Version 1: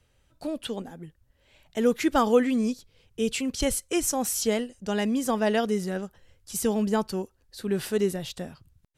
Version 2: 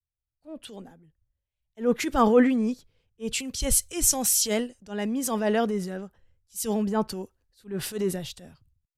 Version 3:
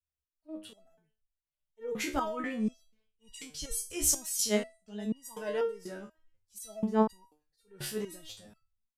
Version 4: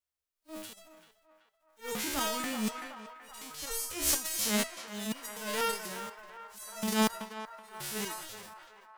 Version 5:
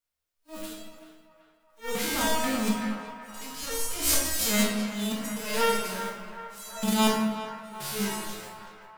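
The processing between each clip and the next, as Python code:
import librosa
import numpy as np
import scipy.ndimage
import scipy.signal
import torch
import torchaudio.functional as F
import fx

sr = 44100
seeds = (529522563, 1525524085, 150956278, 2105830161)

y1 = fx.transient(x, sr, attack_db=-7, sustain_db=4)
y1 = fx.band_widen(y1, sr, depth_pct=100)
y1 = y1 * librosa.db_to_amplitude(-1.0)
y2 = fx.resonator_held(y1, sr, hz=4.1, low_hz=72.0, high_hz=960.0)
y2 = y2 * librosa.db_to_amplitude(3.5)
y3 = fx.envelope_flatten(y2, sr, power=0.3)
y3 = fx.echo_banded(y3, sr, ms=379, feedback_pct=72, hz=1100.0, wet_db=-10.5)
y3 = fx.transient(y3, sr, attack_db=-5, sustain_db=7)
y4 = fx.room_shoebox(y3, sr, seeds[0], volume_m3=390.0, walls='mixed', distance_m=1.7)
y4 = y4 * librosa.db_to_amplitude(1.0)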